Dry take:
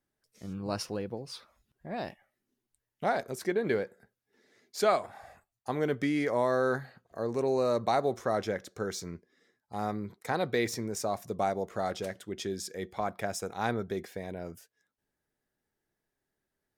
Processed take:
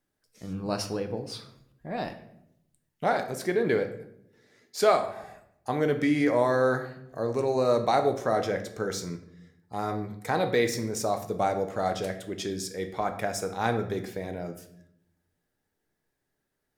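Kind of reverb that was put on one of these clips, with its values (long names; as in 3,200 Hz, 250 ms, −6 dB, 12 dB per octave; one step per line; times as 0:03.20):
rectangular room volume 170 cubic metres, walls mixed, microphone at 0.46 metres
level +3 dB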